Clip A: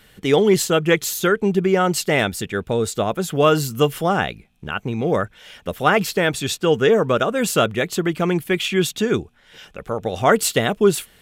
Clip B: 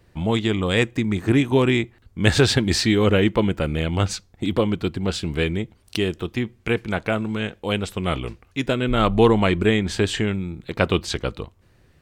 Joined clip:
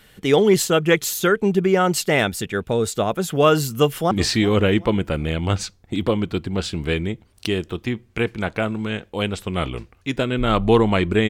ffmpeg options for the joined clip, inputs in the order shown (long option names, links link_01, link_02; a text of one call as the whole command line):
ffmpeg -i cue0.wav -i cue1.wav -filter_complex "[0:a]apad=whole_dur=11.29,atrim=end=11.29,atrim=end=4.112[link_01];[1:a]atrim=start=2.608:end=9.79[link_02];[link_01][link_02]acrossfade=duration=0.004:curve1=hsin:curve2=hsin,asplit=2[link_03][link_04];[link_04]afade=type=in:start_time=3.78:duration=0.01,afade=type=out:start_time=4.11:duration=0.01,aecho=0:1:380|760|1140:0.133352|0.0466733|0.0163356[link_05];[link_03][link_05]amix=inputs=2:normalize=0" out.wav